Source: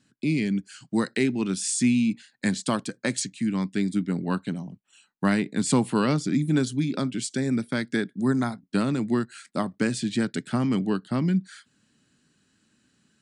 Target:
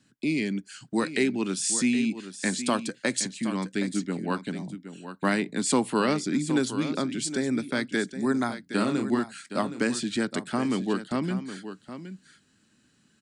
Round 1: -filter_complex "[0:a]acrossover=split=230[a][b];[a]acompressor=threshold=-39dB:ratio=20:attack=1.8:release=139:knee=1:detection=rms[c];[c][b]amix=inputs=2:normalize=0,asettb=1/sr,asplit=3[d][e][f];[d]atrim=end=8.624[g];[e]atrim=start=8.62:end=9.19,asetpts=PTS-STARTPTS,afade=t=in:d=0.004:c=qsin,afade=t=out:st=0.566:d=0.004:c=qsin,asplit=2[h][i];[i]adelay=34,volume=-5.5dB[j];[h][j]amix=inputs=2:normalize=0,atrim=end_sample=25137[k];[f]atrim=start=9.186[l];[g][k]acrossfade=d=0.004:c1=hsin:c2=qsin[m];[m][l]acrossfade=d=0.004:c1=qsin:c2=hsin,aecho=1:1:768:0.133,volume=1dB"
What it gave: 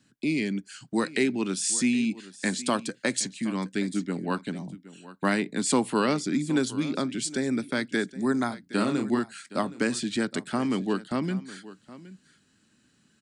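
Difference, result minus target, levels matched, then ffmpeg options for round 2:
echo-to-direct -5.5 dB
-filter_complex "[0:a]acrossover=split=230[a][b];[a]acompressor=threshold=-39dB:ratio=20:attack=1.8:release=139:knee=1:detection=rms[c];[c][b]amix=inputs=2:normalize=0,asettb=1/sr,asplit=3[d][e][f];[d]atrim=end=8.624[g];[e]atrim=start=8.62:end=9.19,asetpts=PTS-STARTPTS,afade=t=in:d=0.004:c=qsin,afade=t=out:st=0.566:d=0.004:c=qsin,asplit=2[h][i];[i]adelay=34,volume=-5.5dB[j];[h][j]amix=inputs=2:normalize=0,atrim=end_sample=25137[k];[f]atrim=start=9.186[l];[g][k]acrossfade=d=0.004:c1=hsin:c2=qsin[m];[m][l]acrossfade=d=0.004:c1=qsin:c2=hsin,aecho=1:1:768:0.266,volume=1dB"

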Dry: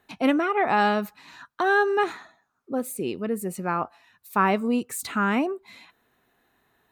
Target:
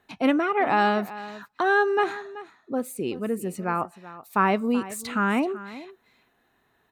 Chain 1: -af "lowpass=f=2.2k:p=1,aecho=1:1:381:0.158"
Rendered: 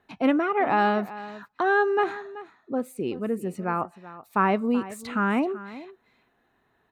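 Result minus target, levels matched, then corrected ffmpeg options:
8000 Hz band -7.5 dB
-af "lowpass=f=7.4k:p=1,aecho=1:1:381:0.158"

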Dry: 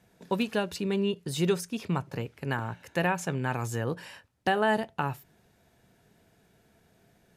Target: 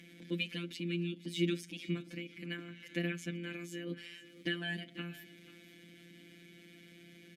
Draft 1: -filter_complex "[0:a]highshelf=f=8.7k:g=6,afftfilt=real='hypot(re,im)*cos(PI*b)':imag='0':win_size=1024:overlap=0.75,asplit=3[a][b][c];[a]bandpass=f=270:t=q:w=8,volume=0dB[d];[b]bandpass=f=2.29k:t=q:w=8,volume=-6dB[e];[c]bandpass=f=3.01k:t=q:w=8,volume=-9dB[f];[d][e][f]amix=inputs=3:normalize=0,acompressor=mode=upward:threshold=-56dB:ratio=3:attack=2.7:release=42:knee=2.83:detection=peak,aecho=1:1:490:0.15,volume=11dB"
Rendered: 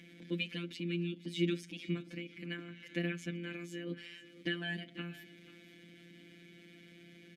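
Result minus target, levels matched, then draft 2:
8000 Hz band -3.5 dB
-filter_complex "[0:a]highshelf=f=8.7k:g=17,afftfilt=real='hypot(re,im)*cos(PI*b)':imag='0':win_size=1024:overlap=0.75,asplit=3[a][b][c];[a]bandpass=f=270:t=q:w=8,volume=0dB[d];[b]bandpass=f=2.29k:t=q:w=8,volume=-6dB[e];[c]bandpass=f=3.01k:t=q:w=8,volume=-9dB[f];[d][e][f]amix=inputs=3:normalize=0,acompressor=mode=upward:threshold=-56dB:ratio=3:attack=2.7:release=42:knee=2.83:detection=peak,aecho=1:1:490:0.15,volume=11dB"

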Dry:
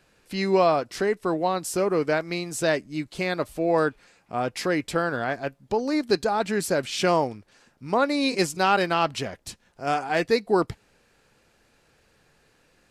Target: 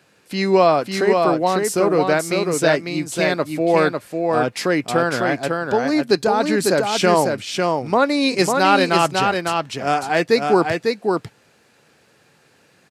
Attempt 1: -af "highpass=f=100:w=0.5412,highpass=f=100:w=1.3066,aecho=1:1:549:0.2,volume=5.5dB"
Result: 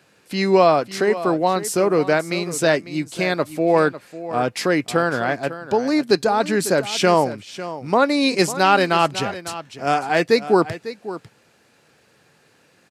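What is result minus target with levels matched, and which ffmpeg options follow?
echo-to-direct -10 dB
-af "highpass=f=100:w=0.5412,highpass=f=100:w=1.3066,aecho=1:1:549:0.631,volume=5.5dB"

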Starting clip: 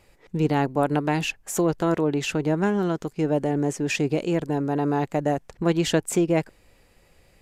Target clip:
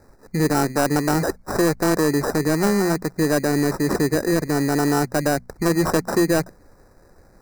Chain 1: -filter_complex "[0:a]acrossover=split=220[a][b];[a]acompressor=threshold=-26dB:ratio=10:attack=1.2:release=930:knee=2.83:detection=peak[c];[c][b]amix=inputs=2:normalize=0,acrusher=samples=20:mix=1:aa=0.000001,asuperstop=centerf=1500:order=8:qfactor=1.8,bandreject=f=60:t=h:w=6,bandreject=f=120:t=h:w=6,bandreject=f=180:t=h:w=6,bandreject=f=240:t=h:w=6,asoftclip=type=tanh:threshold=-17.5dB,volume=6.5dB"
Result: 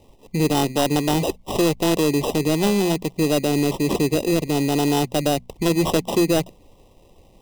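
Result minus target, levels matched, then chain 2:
4000 Hz band +5.5 dB
-filter_complex "[0:a]acrossover=split=220[a][b];[a]acompressor=threshold=-26dB:ratio=10:attack=1.2:release=930:knee=2.83:detection=peak[c];[c][b]amix=inputs=2:normalize=0,acrusher=samples=20:mix=1:aa=0.000001,asuperstop=centerf=3100:order=8:qfactor=1.8,bandreject=f=60:t=h:w=6,bandreject=f=120:t=h:w=6,bandreject=f=180:t=h:w=6,bandreject=f=240:t=h:w=6,asoftclip=type=tanh:threshold=-17.5dB,volume=6.5dB"

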